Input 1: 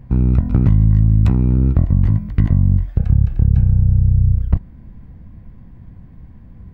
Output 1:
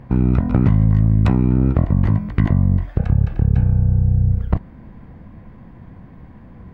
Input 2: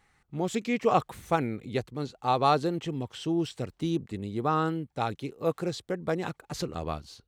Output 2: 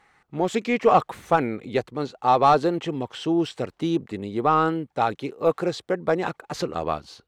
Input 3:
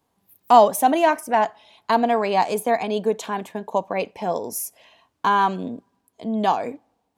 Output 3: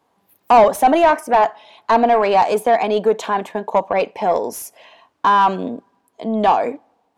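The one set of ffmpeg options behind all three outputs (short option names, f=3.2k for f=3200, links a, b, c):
-filter_complex "[0:a]highshelf=f=4.1k:g=5.5,asplit=2[a][b];[b]highpass=f=720:p=1,volume=19dB,asoftclip=type=tanh:threshold=-1dB[c];[a][c]amix=inputs=2:normalize=0,lowpass=f=1k:p=1,volume=-6dB"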